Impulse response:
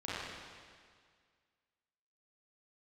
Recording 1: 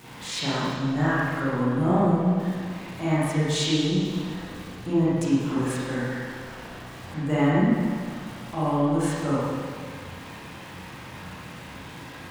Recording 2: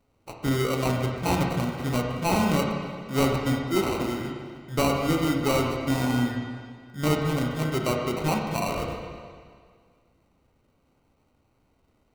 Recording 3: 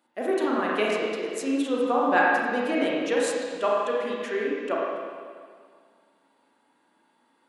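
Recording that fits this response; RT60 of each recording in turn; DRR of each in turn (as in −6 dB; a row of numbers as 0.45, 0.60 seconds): 1; 1.9, 1.9, 1.9 seconds; −10.5, 1.0, −4.5 decibels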